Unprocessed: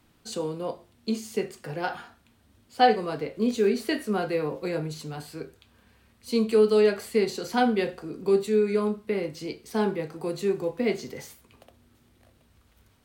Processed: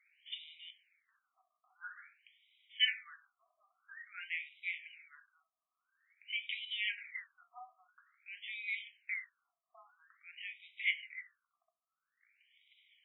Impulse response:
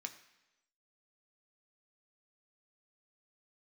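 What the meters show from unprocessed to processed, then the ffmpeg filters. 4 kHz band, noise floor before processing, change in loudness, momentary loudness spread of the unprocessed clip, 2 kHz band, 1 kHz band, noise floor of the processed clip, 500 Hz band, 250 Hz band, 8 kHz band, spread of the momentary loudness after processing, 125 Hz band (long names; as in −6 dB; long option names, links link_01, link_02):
−1.5 dB, −63 dBFS, −12.5 dB, 16 LU, −3.0 dB, −30.5 dB, below −85 dBFS, below −40 dB, below −40 dB, below −35 dB, 21 LU, below −40 dB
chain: -filter_complex "[0:a]crystalizer=i=5:c=0,acontrast=84,asplit=3[link_01][link_02][link_03];[link_01]bandpass=frequency=270:width_type=q:width=8,volume=0dB[link_04];[link_02]bandpass=frequency=2290:width_type=q:width=8,volume=-6dB[link_05];[link_03]bandpass=frequency=3010:width_type=q:width=8,volume=-9dB[link_06];[link_04][link_05][link_06]amix=inputs=3:normalize=0,afftfilt=real='re*between(b*sr/1024,900*pow(2800/900,0.5+0.5*sin(2*PI*0.49*pts/sr))/1.41,900*pow(2800/900,0.5+0.5*sin(2*PI*0.49*pts/sr))*1.41)':imag='im*between(b*sr/1024,900*pow(2800/900,0.5+0.5*sin(2*PI*0.49*pts/sr))/1.41,900*pow(2800/900,0.5+0.5*sin(2*PI*0.49*pts/sr))*1.41)':win_size=1024:overlap=0.75,volume=1dB"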